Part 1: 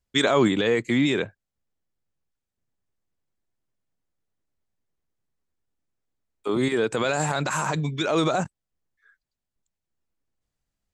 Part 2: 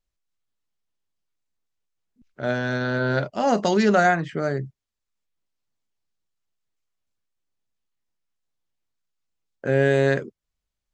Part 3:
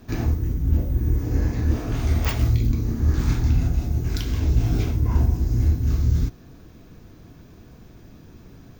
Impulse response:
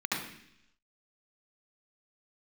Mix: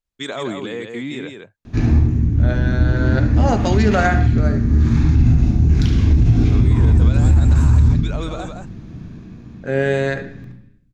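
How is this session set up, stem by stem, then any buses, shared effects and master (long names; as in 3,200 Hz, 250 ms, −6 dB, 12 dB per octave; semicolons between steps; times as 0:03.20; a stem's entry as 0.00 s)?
−7.0 dB, 0.05 s, no send, echo send −5.5 dB, no processing
+1.5 dB, 0.00 s, send −16 dB, no echo send, expander for the loud parts 1.5 to 1, over −29 dBFS
+0.5 dB, 1.65 s, send −8.5 dB, no echo send, low-pass filter 6,000 Hz 12 dB per octave; bass and treble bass +12 dB, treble +1 dB; automatic ducking −8 dB, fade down 0.60 s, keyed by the second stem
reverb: on, RT60 0.70 s, pre-delay 67 ms
echo: single-tap delay 166 ms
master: brickwall limiter −5.5 dBFS, peak gain reduction 8.5 dB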